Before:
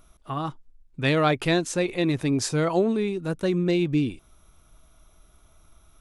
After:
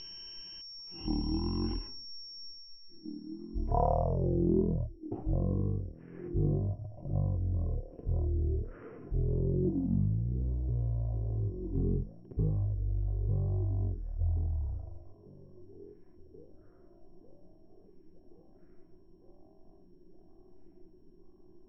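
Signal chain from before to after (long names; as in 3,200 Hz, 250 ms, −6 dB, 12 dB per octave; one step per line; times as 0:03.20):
downward compressor, threshold −29 dBFS, peak gain reduction 11.5 dB
echo through a band-pass that steps 547 ms, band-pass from 990 Hz, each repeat 0.7 octaves, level −8 dB
change of speed 0.277×
steady tone 5,500 Hz −39 dBFS
low-pass filter sweep 3,500 Hz → 350 Hz, 0:02.45–0:04.57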